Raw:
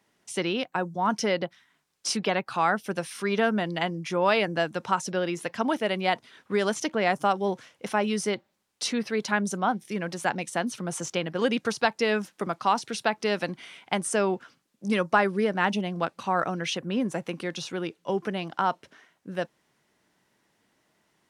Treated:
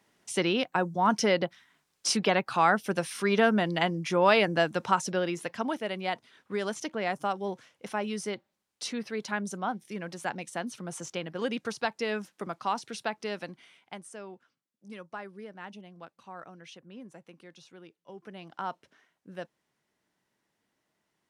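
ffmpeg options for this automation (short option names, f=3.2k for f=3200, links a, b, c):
-af "volume=10.5dB,afade=t=out:st=4.8:d=1:silence=0.421697,afade=t=out:st=13:d=1.13:silence=0.237137,afade=t=in:st=18.15:d=0.51:silence=0.334965"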